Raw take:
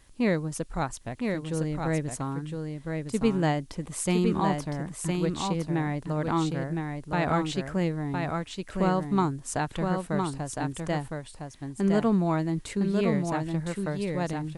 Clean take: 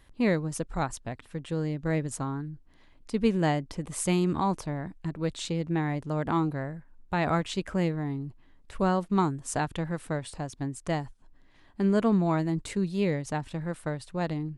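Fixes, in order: expander -35 dBFS, range -21 dB; inverse comb 1011 ms -4.5 dB

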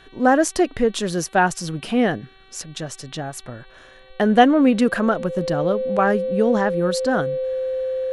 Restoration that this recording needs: de-hum 382.8 Hz, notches 11; band-stop 520 Hz, Q 30

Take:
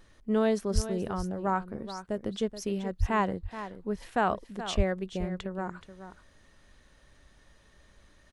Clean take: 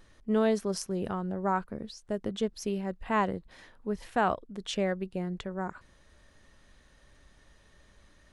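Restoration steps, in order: 0.74–0.86 s: high-pass 140 Hz 24 dB/octave; 2.99–3.11 s: high-pass 140 Hz 24 dB/octave; 4.76–4.88 s: high-pass 140 Hz 24 dB/octave; inverse comb 427 ms -12 dB

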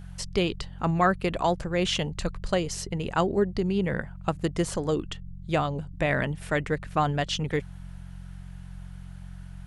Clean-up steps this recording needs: de-hum 45 Hz, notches 4

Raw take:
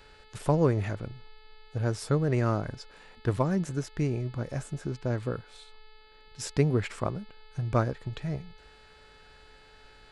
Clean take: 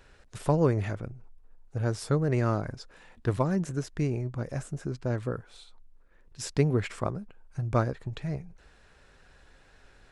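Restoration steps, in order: de-hum 432.7 Hz, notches 11

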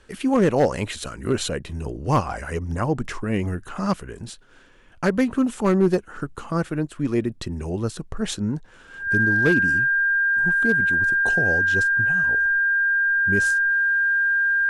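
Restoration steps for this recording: clip repair -11 dBFS; band-stop 1.6 kHz, Q 30

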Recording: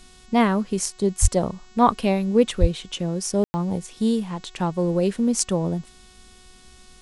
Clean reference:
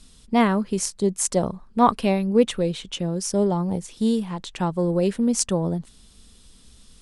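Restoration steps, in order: de-hum 369 Hz, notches 21; de-plosive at 1.21/2.60 s; room tone fill 3.44–3.54 s

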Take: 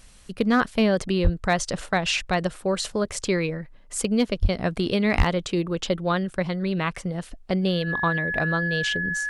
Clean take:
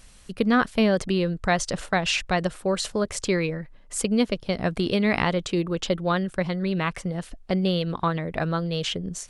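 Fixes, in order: clip repair -11.5 dBFS; band-stop 1.7 kHz, Q 30; de-plosive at 1.23/4.41/5.17 s

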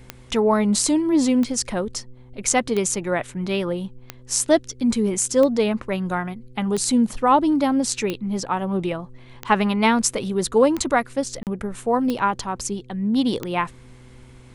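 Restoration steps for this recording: de-click; de-hum 125.7 Hz, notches 4; interpolate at 11.43 s, 38 ms

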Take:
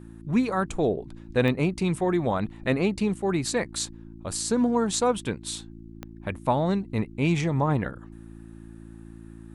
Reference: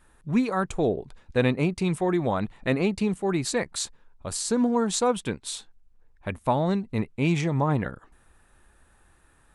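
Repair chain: de-click; de-hum 55.8 Hz, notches 6

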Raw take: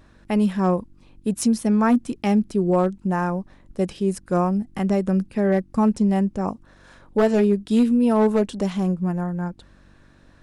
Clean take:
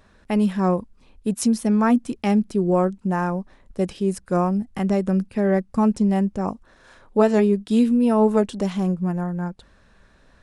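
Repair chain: clip repair -11 dBFS; de-hum 47.7 Hz, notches 7

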